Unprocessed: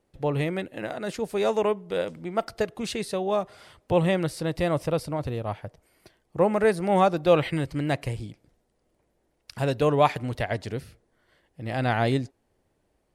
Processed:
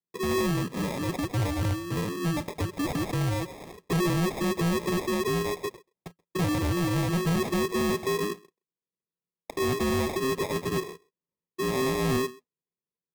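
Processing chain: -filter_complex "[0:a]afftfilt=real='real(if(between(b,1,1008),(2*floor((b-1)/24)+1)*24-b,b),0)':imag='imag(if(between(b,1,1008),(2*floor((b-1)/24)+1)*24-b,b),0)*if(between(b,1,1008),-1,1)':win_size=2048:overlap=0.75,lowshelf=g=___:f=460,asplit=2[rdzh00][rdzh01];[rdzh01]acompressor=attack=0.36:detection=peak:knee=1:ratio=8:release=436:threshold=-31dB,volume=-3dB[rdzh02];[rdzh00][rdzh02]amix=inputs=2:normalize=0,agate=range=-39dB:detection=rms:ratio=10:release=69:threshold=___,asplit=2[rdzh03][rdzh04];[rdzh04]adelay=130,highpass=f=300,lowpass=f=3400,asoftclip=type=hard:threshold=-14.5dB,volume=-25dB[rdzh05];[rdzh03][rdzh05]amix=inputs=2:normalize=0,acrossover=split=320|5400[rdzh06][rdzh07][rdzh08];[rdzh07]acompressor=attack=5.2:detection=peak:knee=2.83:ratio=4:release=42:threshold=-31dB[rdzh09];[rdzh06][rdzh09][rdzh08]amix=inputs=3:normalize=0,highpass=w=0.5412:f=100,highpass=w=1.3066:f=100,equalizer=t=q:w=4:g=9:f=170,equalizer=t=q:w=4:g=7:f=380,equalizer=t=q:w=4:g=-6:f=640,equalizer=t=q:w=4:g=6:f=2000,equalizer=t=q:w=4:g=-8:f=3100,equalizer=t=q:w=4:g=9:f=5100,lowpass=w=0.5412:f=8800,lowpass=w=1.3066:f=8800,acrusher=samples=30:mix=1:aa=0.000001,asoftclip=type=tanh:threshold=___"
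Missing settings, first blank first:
4.5, -48dB, -22.5dB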